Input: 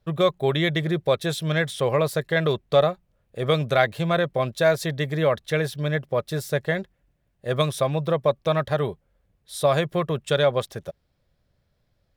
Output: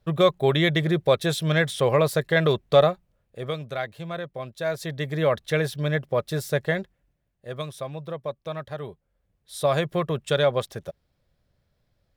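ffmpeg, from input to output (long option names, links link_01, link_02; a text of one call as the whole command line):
ffmpeg -i in.wav -af "volume=21.5dB,afade=type=out:start_time=2.87:duration=0.7:silence=0.251189,afade=type=in:start_time=4.56:duration=0.82:silence=0.298538,afade=type=out:start_time=6.69:duration=0.86:silence=0.298538,afade=type=in:start_time=8.81:duration=1.07:silence=0.334965" out.wav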